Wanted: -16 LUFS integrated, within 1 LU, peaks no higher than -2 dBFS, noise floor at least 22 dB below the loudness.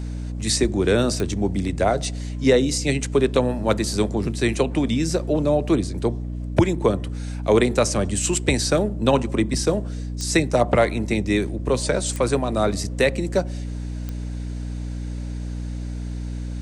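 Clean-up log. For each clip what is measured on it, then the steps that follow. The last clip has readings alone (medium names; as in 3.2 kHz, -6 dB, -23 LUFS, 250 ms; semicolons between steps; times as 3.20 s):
clicks found 4; hum 60 Hz; highest harmonic 300 Hz; hum level -26 dBFS; loudness -22.5 LUFS; peak level -5.0 dBFS; loudness target -16.0 LUFS
-> de-click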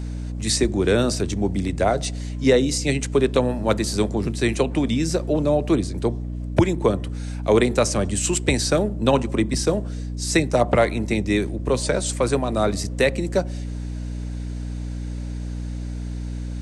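clicks found 0; hum 60 Hz; highest harmonic 300 Hz; hum level -26 dBFS
-> de-hum 60 Hz, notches 5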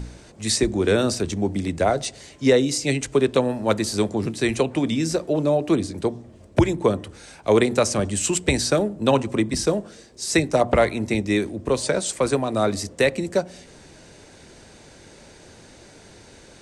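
hum not found; loudness -22.0 LUFS; peak level -5.5 dBFS; loudness target -16.0 LUFS
-> trim +6 dB; peak limiter -2 dBFS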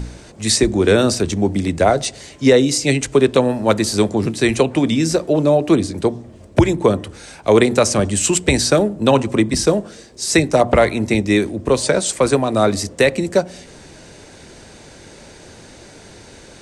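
loudness -16.5 LUFS; peak level -2.0 dBFS; noise floor -42 dBFS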